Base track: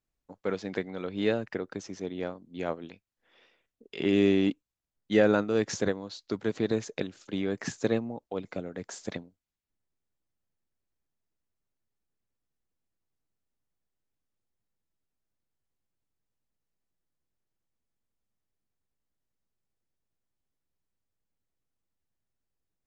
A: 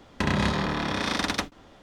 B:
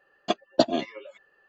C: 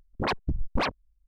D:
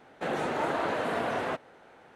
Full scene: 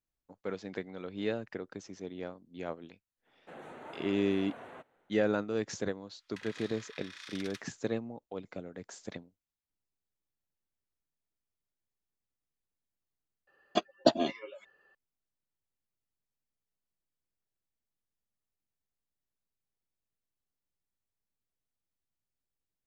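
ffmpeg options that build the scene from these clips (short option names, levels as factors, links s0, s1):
-filter_complex "[0:a]volume=0.473[s0];[4:a]equalizer=f=5100:t=o:w=0.35:g=-14[s1];[1:a]highpass=f=1500:w=0.5412,highpass=f=1500:w=1.3066[s2];[s0]asplit=2[s3][s4];[s3]atrim=end=13.474[s5];[2:a]atrim=end=1.48,asetpts=PTS-STARTPTS,volume=0.668[s6];[s4]atrim=start=14.946[s7];[s1]atrim=end=2.15,asetpts=PTS-STARTPTS,volume=0.133,afade=t=in:d=0.004:c=hsin,afade=t=out:st=2.146:d=0.004:c=hsin,adelay=3260[s8];[s2]atrim=end=1.82,asetpts=PTS-STARTPTS,volume=0.141,afade=t=in:d=0.004:c=hsin,afade=t=out:st=1.816:d=0.004:c=hsin,adelay=6160[s9];[s5][s6]acrossfade=d=0.004:c1=hsin:c2=hsin[s10];[s10][s7]acrossfade=d=0.004:c1=hsin:c2=hsin[s11];[s11][s8][s9]amix=inputs=3:normalize=0"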